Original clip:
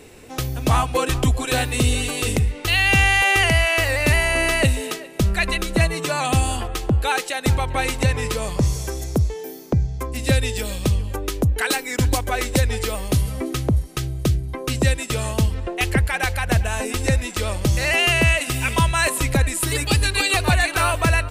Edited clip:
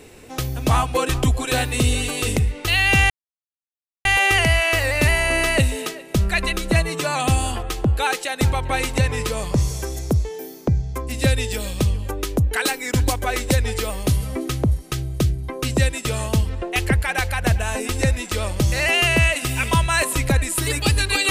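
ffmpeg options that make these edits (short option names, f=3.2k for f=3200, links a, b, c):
-filter_complex "[0:a]asplit=2[a][b];[a]atrim=end=3.1,asetpts=PTS-STARTPTS,afade=t=out:st=3.096:d=0.004:c=hsin,apad=pad_dur=0.95[c];[b]atrim=start=3.1,asetpts=PTS-STARTPTS,afade=t=in:d=0.004:c=hsin[d];[c][d]concat=n=2:v=0:a=1"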